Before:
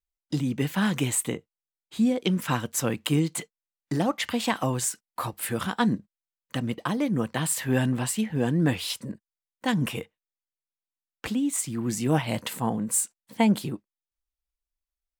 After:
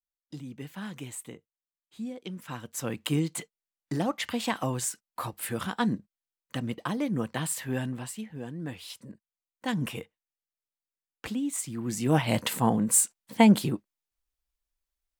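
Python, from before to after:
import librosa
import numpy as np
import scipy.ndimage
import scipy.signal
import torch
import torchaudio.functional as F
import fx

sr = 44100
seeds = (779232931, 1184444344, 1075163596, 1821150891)

y = fx.gain(x, sr, db=fx.line((2.44, -14.0), (3.02, -3.5), (7.37, -3.5), (8.55, -14.5), (9.74, -4.5), (11.84, -4.5), (12.36, 3.0)))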